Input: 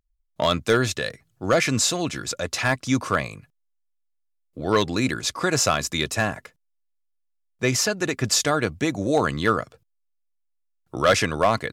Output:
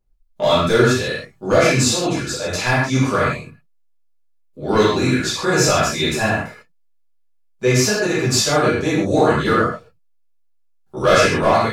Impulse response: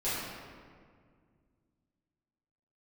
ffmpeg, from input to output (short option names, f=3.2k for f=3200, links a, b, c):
-filter_complex "[0:a]equalizer=f=1.9k:t=o:w=0.22:g=-3[a];[1:a]atrim=start_sample=2205,afade=t=out:st=0.21:d=0.01,atrim=end_sample=9702[b];[a][b]afir=irnorm=-1:irlink=0,volume=-1dB"